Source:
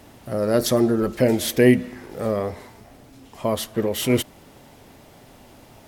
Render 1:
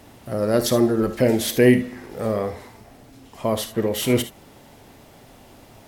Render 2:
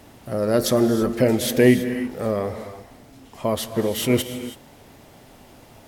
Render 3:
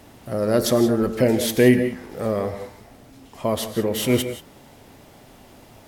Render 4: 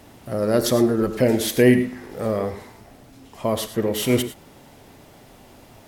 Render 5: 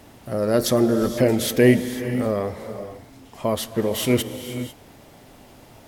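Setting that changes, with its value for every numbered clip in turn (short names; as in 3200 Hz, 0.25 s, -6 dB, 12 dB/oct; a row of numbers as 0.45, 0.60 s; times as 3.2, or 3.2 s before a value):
non-linear reverb, gate: 90, 350, 200, 130, 520 ms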